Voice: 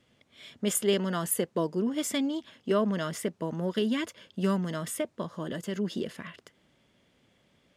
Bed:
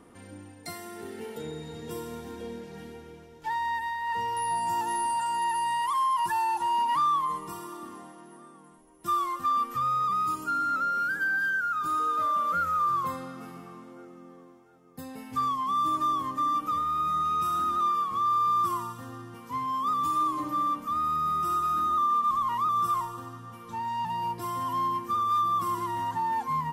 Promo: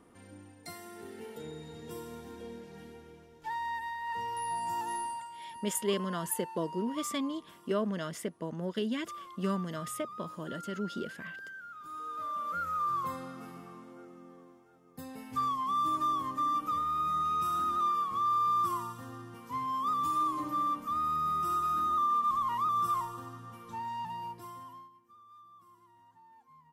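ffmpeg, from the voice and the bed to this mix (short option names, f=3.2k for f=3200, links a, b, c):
-filter_complex "[0:a]adelay=5000,volume=-5dB[a];[1:a]volume=8.5dB,afade=t=out:st=4.95:d=0.35:silence=0.251189,afade=t=in:st=11.8:d=1.46:silence=0.188365,afade=t=out:st=23.55:d=1.35:silence=0.0446684[b];[a][b]amix=inputs=2:normalize=0"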